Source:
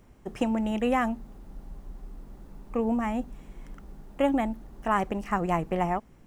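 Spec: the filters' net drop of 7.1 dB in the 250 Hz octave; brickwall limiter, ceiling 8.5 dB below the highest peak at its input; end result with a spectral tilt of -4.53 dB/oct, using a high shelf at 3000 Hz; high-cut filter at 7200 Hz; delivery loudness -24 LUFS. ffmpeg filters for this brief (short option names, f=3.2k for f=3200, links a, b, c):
-af "lowpass=7.2k,equalizer=f=250:t=o:g=-8.5,highshelf=f=3k:g=4,volume=9.5dB,alimiter=limit=-12dB:level=0:latency=1"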